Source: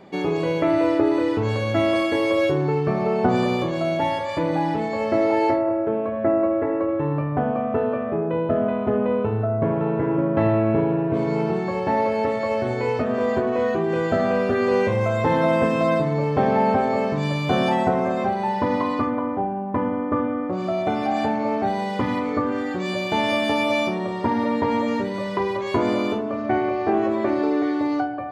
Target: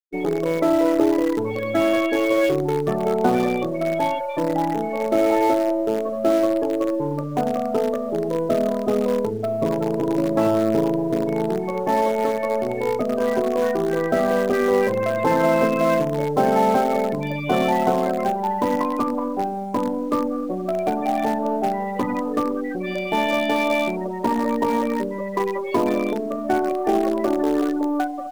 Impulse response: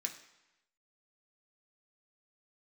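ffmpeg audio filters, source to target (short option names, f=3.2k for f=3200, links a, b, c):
-filter_complex "[0:a]aemphasis=mode=production:type=cd,afftfilt=real='re*gte(hypot(re,im),0.1)':imag='im*gte(hypot(re,im),0.1)':win_size=1024:overlap=0.75,acrossover=split=150 2900:gain=0.0794 1 0.2[a][b][c];[a][b][c]amix=inputs=3:normalize=0,asplit=2[d][e];[e]acrusher=bits=4:dc=4:mix=0:aa=0.000001,volume=-11.5dB[f];[d][f]amix=inputs=2:normalize=0"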